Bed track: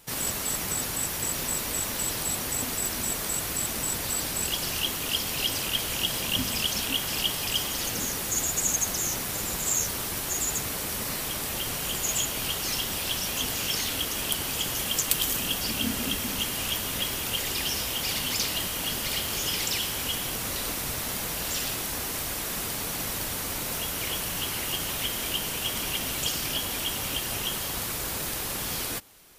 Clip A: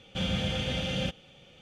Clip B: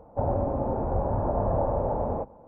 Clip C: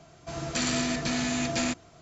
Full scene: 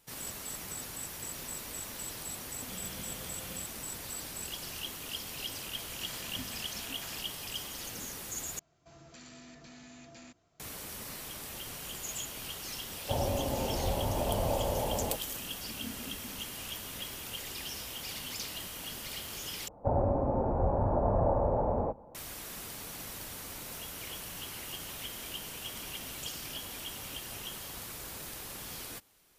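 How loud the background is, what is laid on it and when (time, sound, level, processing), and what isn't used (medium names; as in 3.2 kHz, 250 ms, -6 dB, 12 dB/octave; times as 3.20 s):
bed track -11.5 dB
2.53 s: add A -17 dB
5.46 s: add C -17 dB + elliptic high-pass 750 Hz
8.59 s: replace with C -17.5 dB + compression 2:1, threshold -35 dBFS
12.92 s: add B -5.5 dB
19.68 s: replace with B -2 dB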